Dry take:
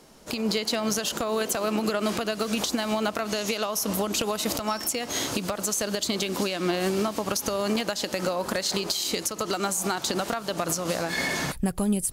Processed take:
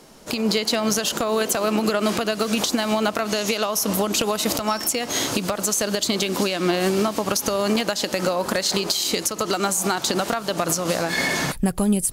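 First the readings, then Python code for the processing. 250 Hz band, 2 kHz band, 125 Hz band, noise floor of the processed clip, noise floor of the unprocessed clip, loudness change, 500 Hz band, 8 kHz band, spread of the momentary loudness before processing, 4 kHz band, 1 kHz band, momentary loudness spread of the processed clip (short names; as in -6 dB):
+5.0 dB, +5.0 dB, +5.0 dB, -35 dBFS, -39 dBFS, +5.0 dB, +5.0 dB, +5.0 dB, 3 LU, +5.0 dB, +5.0 dB, 3 LU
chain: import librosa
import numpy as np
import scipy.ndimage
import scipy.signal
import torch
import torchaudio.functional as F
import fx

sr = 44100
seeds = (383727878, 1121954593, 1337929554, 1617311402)

y = fx.peak_eq(x, sr, hz=65.0, db=-6.5, octaves=0.56)
y = F.gain(torch.from_numpy(y), 5.0).numpy()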